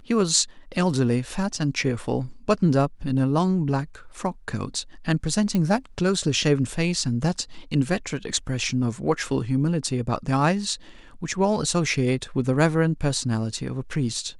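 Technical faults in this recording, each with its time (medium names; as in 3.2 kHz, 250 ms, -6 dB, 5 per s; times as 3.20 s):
5.55 s: pop -13 dBFS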